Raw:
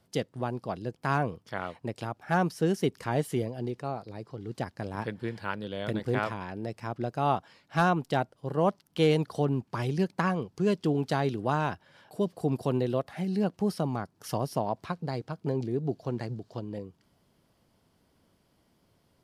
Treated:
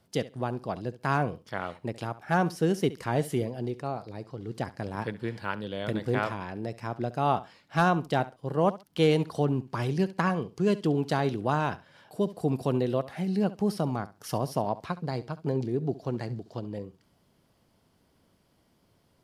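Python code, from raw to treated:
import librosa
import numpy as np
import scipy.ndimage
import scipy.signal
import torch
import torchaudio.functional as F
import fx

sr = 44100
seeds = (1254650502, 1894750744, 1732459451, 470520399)

y = fx.echo_feedback(x, sr, ms=68, feedback_pct=18, wet_db=-17.0)
y = y * librosa.db_to_amplitude(1.0)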